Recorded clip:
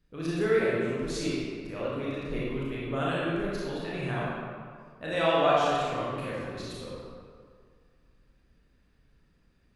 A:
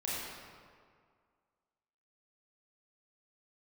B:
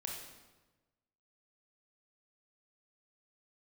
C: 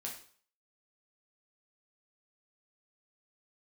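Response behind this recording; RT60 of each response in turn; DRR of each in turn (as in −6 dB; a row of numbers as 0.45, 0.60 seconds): A; 2.0, 1.2, 0.50 seconds; −7.5, −0.5, −2.0 decibels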